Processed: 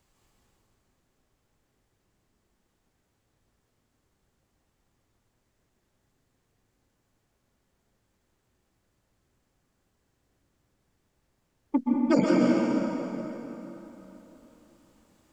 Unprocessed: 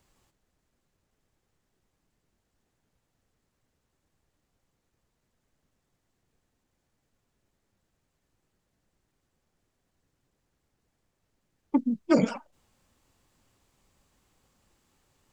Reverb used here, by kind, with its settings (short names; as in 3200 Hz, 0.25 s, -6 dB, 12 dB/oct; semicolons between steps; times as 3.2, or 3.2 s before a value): plate-style reverb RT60 3.7 s, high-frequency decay 0.7×, pre-delay 0.115 s, DRR -3.5 dB; gain -1.5 dB